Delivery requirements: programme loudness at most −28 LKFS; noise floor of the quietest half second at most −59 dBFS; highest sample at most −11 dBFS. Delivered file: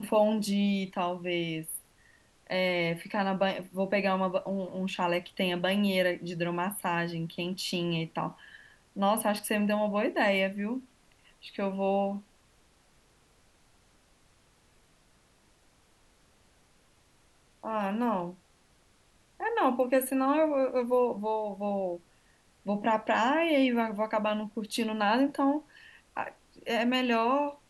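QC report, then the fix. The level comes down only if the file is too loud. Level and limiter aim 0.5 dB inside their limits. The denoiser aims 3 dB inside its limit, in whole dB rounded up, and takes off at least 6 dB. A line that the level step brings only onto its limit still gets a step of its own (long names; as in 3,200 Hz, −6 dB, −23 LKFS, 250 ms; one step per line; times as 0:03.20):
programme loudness −29.5 LKFS: in spec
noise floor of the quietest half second −64 dBFS: in spec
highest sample −13.5 dBFS: in spec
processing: no processing needed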